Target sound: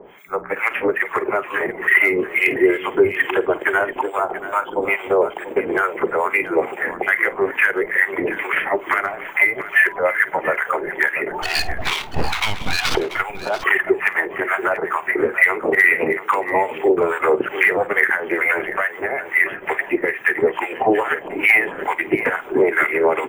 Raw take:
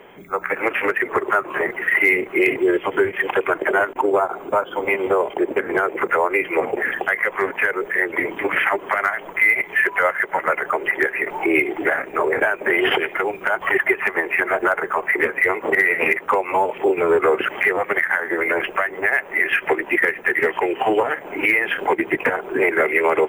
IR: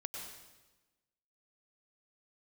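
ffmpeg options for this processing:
-filter_complex "[0:a]asettb=1/sr,asplit=3[link_01][link_02][link_03];[link_01]atrim=end=11.424[link_04];[link_02]atrim=start=11.42:end=12.95,asetpts=PTS-STARTPTS,afade=type=in:duration=0.004:curve=qsin,afade=type=out:start_time=1.526:duration=0.004:curve=qsin,aeval=exprs='abs(val(0))':channel_layout=same[link_05];[link_03]atrim=start=12.946[link_06];[link_04][link_05]acrossfade=duration=0.004:curve1=hsin:curve2=qsin[link_07];[link_07][link_06]acrossfade=duration=0.004:curve1=qsin:curve2=hsin,acrossover=split=920[link_08][link_09];[link_08]aeval=exprs='val(0)*(1-1/2+1/2*cos(2*PI*2.3*n/s))':channel_layout=same[link_10];[link_09]aeval=exprs='val(0)*(1-1/2-1/2*cos(2*PI*2.3*n/s))':channel_layout=same[link_11];[link_10][link_11]amix=inputs=2:normalize=0,aecho=1:1:50|687:0.133|0.224,volume=5dB"

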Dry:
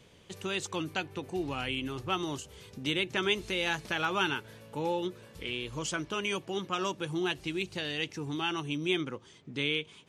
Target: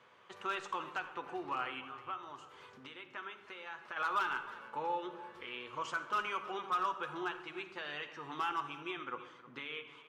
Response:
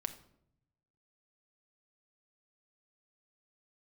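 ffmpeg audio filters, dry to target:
-filter_complex "[0:a]asplit=3[link_01][link_02][link_03];[link_01]afade=type=out:start_time=1.8:duration=0.02[link_04];[link_02]acompressor=threshold=-41dB:ratio=10,afade=type=in:start_time=1.8:duration=0.02,afade=type=out:start_time=3.96:duration=0.02[link_05];[link_03]afade=type=in:start_time=3.96:duration=0.02[link_06];[link_04][link_05][link_06]amix=inputs=3:normalize=0,alimiter=level_in=1dB:limit=-24dB:level=0:latency=1:release=256,volume=-1dB,bandpass=frequency=1200:width_type=q:width=2.5:csg=0,volume=35.5dB,asoftclip=hard,volume=-35.5dB,aecho=1:1:315:0.141[link_07];[1:a]atrim=start_sample=2205,asetrate=28665,aresample=44100[link_08];[link_07][link_08]afir=irnorm=-1:irlink=0,volume=6.5dB"

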